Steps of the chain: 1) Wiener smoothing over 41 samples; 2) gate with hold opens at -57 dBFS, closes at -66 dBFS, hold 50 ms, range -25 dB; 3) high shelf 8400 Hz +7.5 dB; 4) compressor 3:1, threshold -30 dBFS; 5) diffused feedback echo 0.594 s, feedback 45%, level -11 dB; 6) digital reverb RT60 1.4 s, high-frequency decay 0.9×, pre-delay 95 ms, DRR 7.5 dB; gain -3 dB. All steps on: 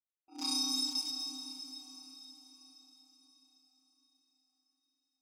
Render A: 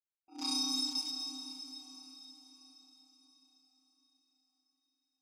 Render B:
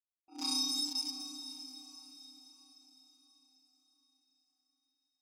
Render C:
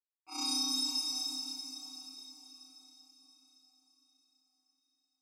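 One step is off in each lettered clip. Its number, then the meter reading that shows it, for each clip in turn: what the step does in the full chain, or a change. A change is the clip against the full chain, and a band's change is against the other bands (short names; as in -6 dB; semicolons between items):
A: 3, 8 kHz band -2.0 dB; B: 6, echo-to-direct -5.5 dB to -10.0 dB; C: 1, 250 Hz band -3.0 dB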